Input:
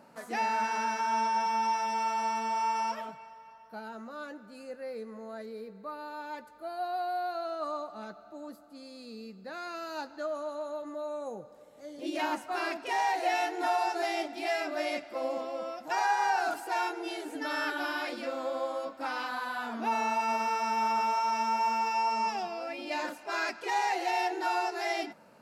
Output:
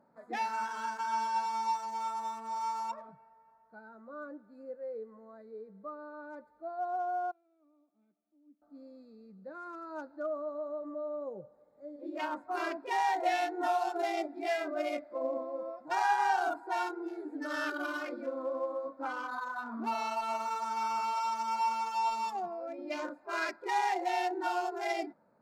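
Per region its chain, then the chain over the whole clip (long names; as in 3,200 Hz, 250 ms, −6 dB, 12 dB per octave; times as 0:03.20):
0:07.31–0:08.62: formant resonators in series i + spectral tilt +4.5 dB per octave
0:11.96–0:12.36: high-pass filter 500 Hz 6 dB per octave + high-shelf EQ 6,000 Hz −5.5 dB
whole clip: adaptive Wiener filter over 15 samples; noise reduction from a noise print of the clip's start 10 dB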